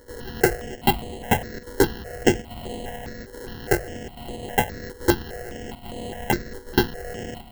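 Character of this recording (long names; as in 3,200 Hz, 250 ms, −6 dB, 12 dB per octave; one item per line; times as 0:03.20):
a buzz of ramps at a fixed pitch in blocks of 8 samples
chopped level 1.2 Hz, depth 60%, duty 90%
aliases and images of a low sample rate 1,200 Hz, jitter 0%
notches that jump at a steady rate 4.9 Hz 700–5,500 Hz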